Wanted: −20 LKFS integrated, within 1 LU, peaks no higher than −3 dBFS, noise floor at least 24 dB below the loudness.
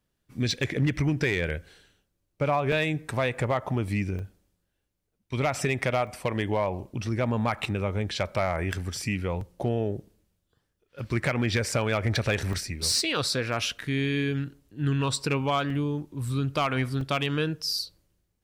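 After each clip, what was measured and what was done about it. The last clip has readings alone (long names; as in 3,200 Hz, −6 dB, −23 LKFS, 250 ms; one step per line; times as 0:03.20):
share of clipped samples 0.3%; peaks flattened at −17.5 dBFS; number of dropouts 8; longest dropout 3.1 ms; integrated loudness −28.0 LKFS; sample peak −17.5 dBFS; target loudness −20.0 LKFS
→ clipped peaks rebuilt −17.5 dBFS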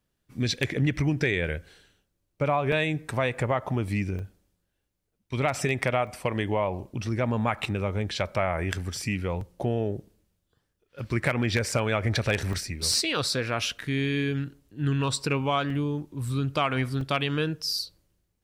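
share of clipped samples 0.0%; number of dropouts 8; longest dropout 3.1 ms
→ repair the gap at 0:02.72/0:04.19/0:06.07/0:09.41/0:11.72/0:12.53/0:15.70/0:17.01, 3.1 ms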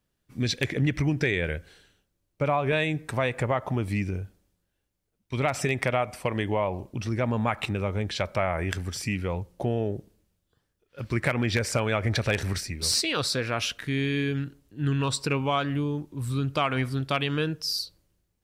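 number of dropouts 0; integrated loudness −27.5 LKFS; sample peak −8.5 dBFS; target loudness −20.0 LKFS
→ level +7.5 dB
brickwall limiter −3 dBFS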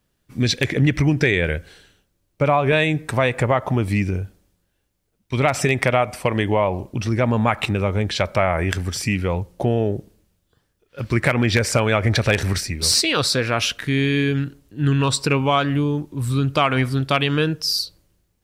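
integrated loudness −20.5 LKFS; sample peak −3.0 dBFS; background noise floor −70 dBFS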